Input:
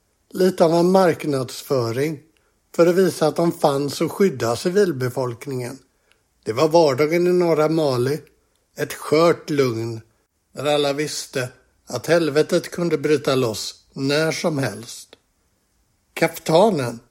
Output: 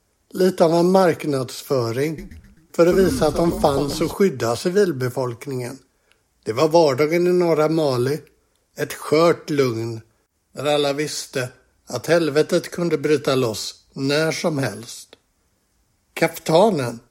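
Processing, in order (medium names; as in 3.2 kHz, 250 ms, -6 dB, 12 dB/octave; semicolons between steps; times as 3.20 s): 2.05–4.14 s: frequency-shifting echo 129 ms, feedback 47%, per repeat -120 Hz, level -9.5 dB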